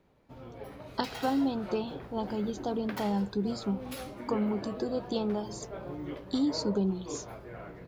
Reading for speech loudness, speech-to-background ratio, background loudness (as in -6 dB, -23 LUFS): -32.5 LUFS, 9.5 dB, -42.0 LUFS